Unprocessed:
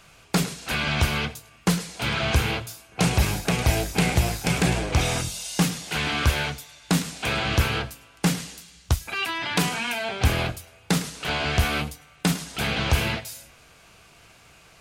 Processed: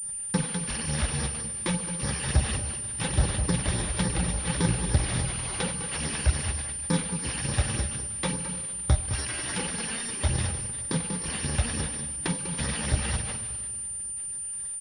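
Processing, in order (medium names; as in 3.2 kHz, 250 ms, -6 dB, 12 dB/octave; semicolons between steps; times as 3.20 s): bit-reversed sample order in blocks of 64 samples; gate with hold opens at -42 dBFS; in parallel at 0 dB: compression, threshold -29 dBFS, peak gain reduction 14 dB; on the sum: phase shifter stages 12, 3.5 Hz, lowest notch 100–3100 Hz; delay 207 ms -8.5 dB; plate-style reverb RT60 2.9 s, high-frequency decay 0.95×, DRR 10.5 dB; granulator 100 ms, spray 12 ms, pitch spread up and down by 0 st; class-D stage that switches slowly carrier 9.2 kHz; trim -3.5 dB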